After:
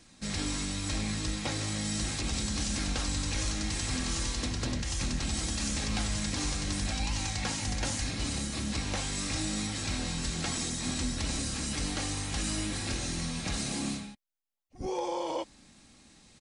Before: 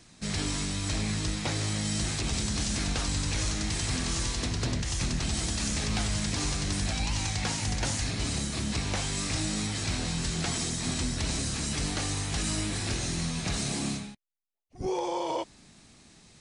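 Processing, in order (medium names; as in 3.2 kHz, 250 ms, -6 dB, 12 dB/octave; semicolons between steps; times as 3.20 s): comb 3.7 ms, depth 33%; trim -2.5 dB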